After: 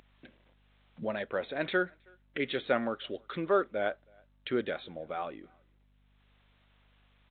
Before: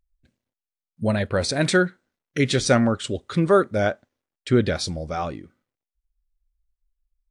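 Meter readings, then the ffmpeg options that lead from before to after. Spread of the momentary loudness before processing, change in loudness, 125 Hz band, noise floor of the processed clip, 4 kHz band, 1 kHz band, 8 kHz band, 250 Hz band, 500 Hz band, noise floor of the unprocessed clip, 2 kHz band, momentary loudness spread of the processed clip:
12 LU, -11.0 dB, -22.5 dB, -67 dBFS, -12.5 dB, -8.5 dB, under -40 dB, -14.0 dB, -9.5 dB, under -85 dBFS, -8.5 dB, 12 LU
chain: -filter_complex "[0:a]highpass=330,acompressor=mode=upward:threshold=-25dB:ratio=2.5,aeval=exprs='val(0)+0.00126*(sin(2*PI*50*n/s)+sin(2*PI*2*50*n/s)/2+sin(2*PI*3*50*n/s)/3+sin(2*PI*4*50*n/s)/4+sin(2*PI*5*50*n/s)/5)':c=same,asplit=2[a][b];[b]adelay=320,highpass=300,lowpass=3.4k,asoftclip=type=hard:threshold=-13dB,volume=-30dB[c];[a][c]amix=inputs=2:normalize=0,volume=-8.5dB" -ar 8000 -c:a pcm_mulaw

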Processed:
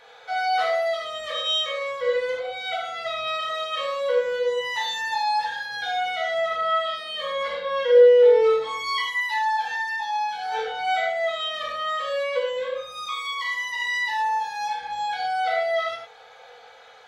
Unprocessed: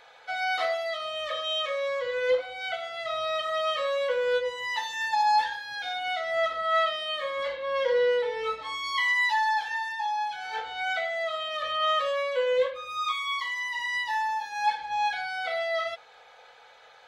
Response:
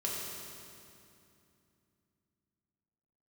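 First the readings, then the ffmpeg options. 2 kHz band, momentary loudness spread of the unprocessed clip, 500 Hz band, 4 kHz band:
+1.5 dB, 8 LU, +6.5 dB, +3.5 dB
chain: -filter_complex "[0:a]acompressor=threshold=-26dB:ratio=6[a];[1:a]atrim=start_sample=2205,atrim=end_sample=6174,asetrate=52920,aresample=44100[b];[a][b]afir=irnorm=-1:irlink=0,volume=4dB"

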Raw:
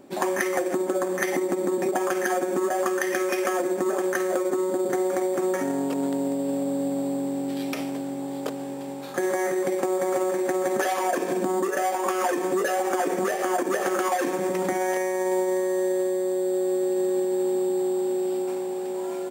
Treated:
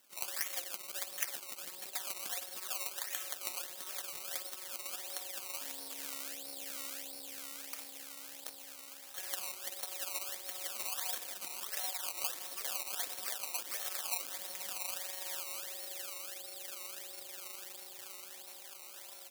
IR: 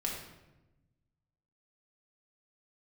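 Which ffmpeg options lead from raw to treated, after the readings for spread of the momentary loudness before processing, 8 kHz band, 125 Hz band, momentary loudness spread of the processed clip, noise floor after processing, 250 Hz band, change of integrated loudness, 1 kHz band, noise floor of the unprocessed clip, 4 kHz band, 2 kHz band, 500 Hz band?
5 LU, -4.0 dB, under -30 dB, 9 LU, -51 dBFS, -36.5 dB, -13.5 dB, -21.5 dB, -32 dBFS, -0.5 dB, -15.0 dB, -31.5 dB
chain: -af "equalizer=f=370:w=5.8:g=-12.5,tremolo=f=210:d=0.788,acrusher=samples=18:mix=1:aa=0.000001:lfo=1:lforange=18:lforate=1.5,aderivative"

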